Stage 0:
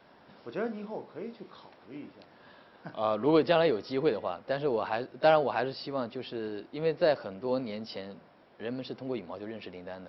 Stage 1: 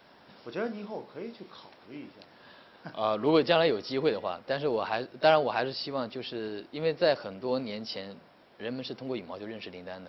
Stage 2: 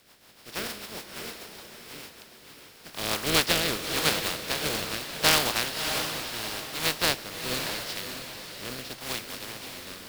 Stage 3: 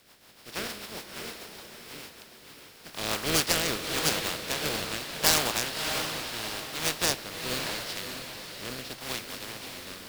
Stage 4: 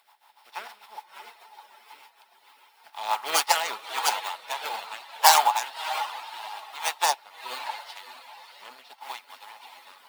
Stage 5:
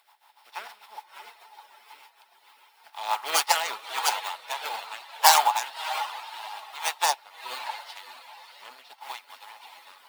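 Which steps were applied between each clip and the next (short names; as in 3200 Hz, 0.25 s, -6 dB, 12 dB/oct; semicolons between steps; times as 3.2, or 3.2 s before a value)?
high shelf 3000 Hz +9 dB
spectral contrast lowered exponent 0.22; rotary speaker horn 6.7 Hz, later 0.8 Hz, at 2.78; diffused feedback echo 0.621 s, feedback 41%, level -7 dB; gain +2.5 dB
self-modulated delay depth 0.22 ms
per-bin expansion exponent 2; in parallel at 0 dB: upward compressor, threshold -41 dBFS; on the sum: resonant high-pass 860 Hz, resonance Q 10; gain -1 dB
low shelf 270 Hz -8 dB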